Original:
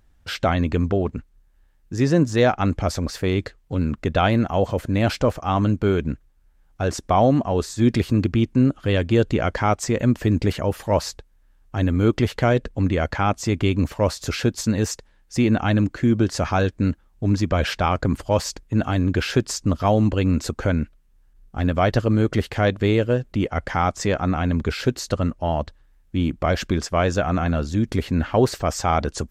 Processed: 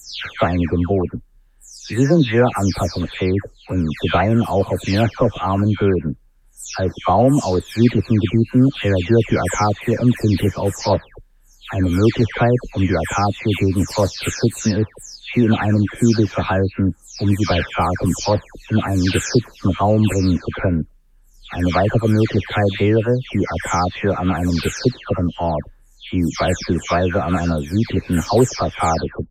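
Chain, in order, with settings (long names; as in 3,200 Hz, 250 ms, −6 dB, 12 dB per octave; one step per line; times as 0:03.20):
every frequency bin delayed by itself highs early, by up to 340 ms
level +4 dB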